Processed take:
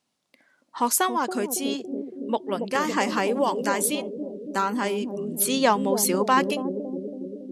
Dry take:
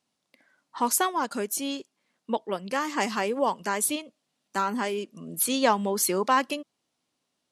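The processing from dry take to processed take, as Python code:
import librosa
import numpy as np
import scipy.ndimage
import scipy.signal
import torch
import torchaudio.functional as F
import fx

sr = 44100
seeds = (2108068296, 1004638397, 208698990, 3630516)

y = fx.echo_bbd(x, sr, ms=279, stages=1024, feedback_pct=72, wet_db=-4.0)
y = fx.band_squash(y, sr, depth_pct=70, at=(2.75, 3.84))
y = y * 10.0 ** (2.0 / 20.0)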